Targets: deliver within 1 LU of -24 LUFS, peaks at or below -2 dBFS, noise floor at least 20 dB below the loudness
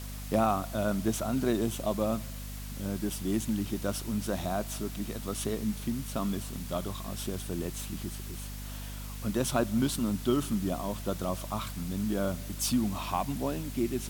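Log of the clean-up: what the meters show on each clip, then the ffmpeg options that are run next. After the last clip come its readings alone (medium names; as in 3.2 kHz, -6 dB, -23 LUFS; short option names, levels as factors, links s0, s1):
hum 50 Hz; highest harmonic 250 Hz; hum level -38 dBFS; noise floor -40 dBFS; noise floor target -53 dBFS; loudness -32.5 LUFS; peak level -14.0 dBFS; loudness target -24.0 LUFS
-> -af "bandreject=f=50:t=h:w=6,bandreject=f=100:t=h:w=6,bandreject=f=150:t=h:w=6,bandreject=f=200:t=h:w=6,bandreject=f=250:t=h:w=6"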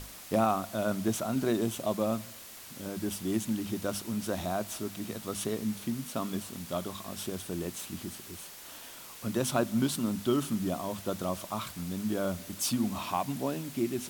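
hum not found; noise floor -47 dBFS; noise floor target -53 dBFS
-> -af "afftdn=nr=6:nf=-47"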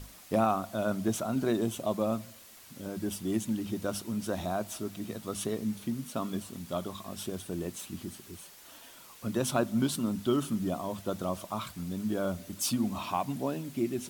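noise floor -53 dBFS; loudness -33.0 LUFS; peak level -14.0 dBFS; loudness target -24.0 LUFS
-> -af "volume=2.82"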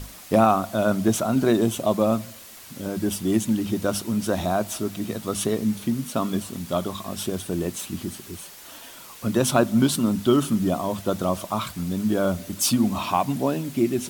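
loudness -24.0 LUFS; peak level -5.0 dBFS; noise floor -44 dBFS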